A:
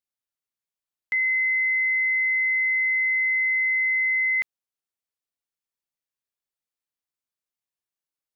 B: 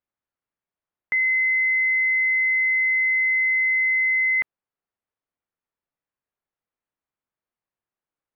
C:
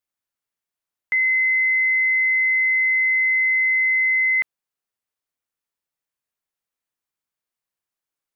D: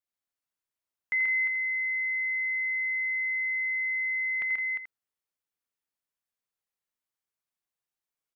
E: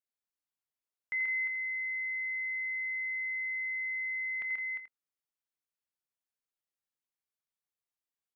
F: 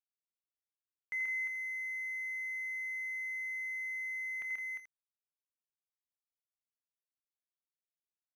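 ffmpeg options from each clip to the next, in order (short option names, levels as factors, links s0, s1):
-af "lowpass=1700,volume=2.24"
-af "highshelf=f=2100:g=11,volume=0.668"
-af "aecho=1:1:85|134|163|352|434:0.335|0.668|0.335|0.473|0.168,volume=0.422"
-filter_complex "[0:a]asplit=2[s0][s1];[s1]adelay=24,volume=0.2[s2];[s0][s2]amix=inputs=2:normalize=0,volume=0.473"
-af "aeval=exprs='sgn(val(0))*max(abs(val(0))-0.00188,0)':c=same,volume=0.708"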